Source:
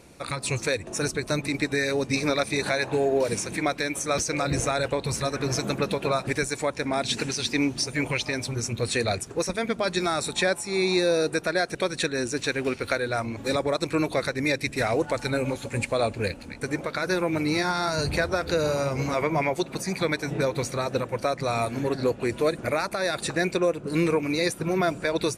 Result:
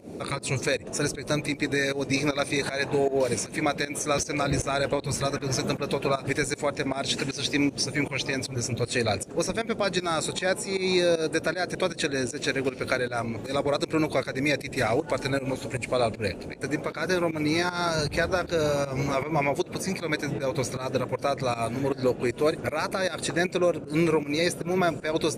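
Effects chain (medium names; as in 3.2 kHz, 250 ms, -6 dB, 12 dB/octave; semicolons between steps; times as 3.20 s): band noise 96–540 Hz -39 dBFS; volume shaper 156 bpm, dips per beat 1, -16 dB, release 161 ms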